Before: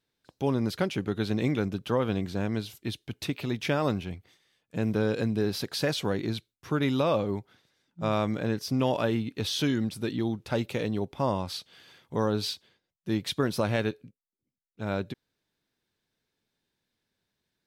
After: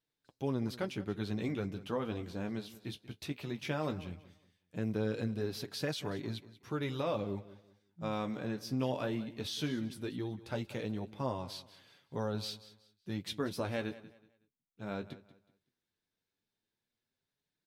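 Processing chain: flange 0.17 Hz, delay 6.3 ms, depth 9 ms, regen -33%; on a send: feedback delay 186 ms, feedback 29%, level -17 dB; on the sum: trim -5 dB

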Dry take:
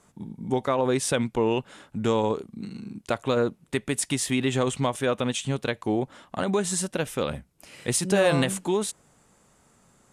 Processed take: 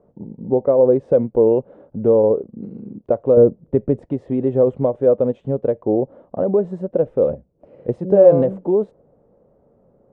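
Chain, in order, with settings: 3.37–4.06 s: bass shelf 230 Hz +9.5 dB; 7.34–7.89 s: compression, threshold -40 dBFS, peak gain reduction 12 dB; resonant low-pass 530 Hz, resonance Q 3.7; trim +2.5 dB

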